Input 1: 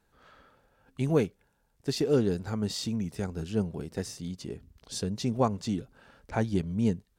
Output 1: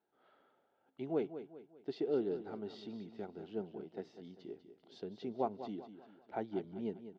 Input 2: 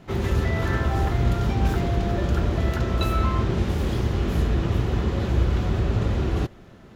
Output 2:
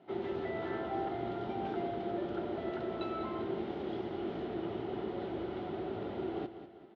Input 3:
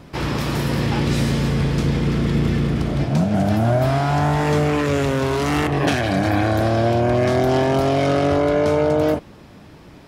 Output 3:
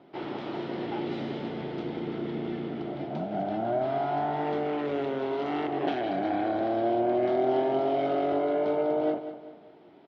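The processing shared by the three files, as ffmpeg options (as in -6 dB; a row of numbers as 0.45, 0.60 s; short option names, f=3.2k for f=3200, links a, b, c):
-filter_complex "[0:a]highpass=330,equalizer=f=360:t=q:w=4:g=6,equalizer=f=510:t=q:w=4:g=-5,equalizer=f=730:t=q:w=4:g=4,equalizer=f=1.1k:t=q:w=4:g=-9,equalizer=f=1.7k:t=q:w=4:g=-9,equalizer=f=2.5k:t=q:w=4:g=-9,lowpass=f=3.1k:w=0.5412,lowpass=f=3.1k:w=1.3066,asplit=2[a][b];[b]aecho=0:1:197|394|591|788:0.266|0.109|0.0447|0.0183[c];[a][c]amix=inputs=2:normalize=0,volume=-7.5dB"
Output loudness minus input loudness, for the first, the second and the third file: -11.0, -14.0, -10.0 LU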